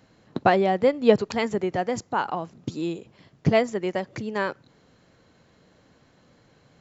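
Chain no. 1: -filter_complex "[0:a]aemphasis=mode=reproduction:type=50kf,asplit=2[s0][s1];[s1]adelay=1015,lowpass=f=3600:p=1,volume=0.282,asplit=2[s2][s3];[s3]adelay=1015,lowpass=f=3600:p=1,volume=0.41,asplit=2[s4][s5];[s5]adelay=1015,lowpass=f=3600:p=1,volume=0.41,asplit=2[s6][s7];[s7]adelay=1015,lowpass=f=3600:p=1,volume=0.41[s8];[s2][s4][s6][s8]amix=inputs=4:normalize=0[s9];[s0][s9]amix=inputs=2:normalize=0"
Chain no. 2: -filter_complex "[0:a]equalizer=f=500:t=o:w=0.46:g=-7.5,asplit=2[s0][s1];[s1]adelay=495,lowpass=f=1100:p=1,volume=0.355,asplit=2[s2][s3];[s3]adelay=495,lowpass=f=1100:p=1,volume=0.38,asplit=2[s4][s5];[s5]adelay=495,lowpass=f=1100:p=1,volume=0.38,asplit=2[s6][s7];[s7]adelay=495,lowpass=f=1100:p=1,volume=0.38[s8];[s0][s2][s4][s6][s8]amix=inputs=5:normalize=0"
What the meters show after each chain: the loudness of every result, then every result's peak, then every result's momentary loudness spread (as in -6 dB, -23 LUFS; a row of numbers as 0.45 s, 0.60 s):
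-25.0 LUFS, -26.5 LUFS; -4.0 dBFS, -6.0 dBFS; 19 LU, 17 LU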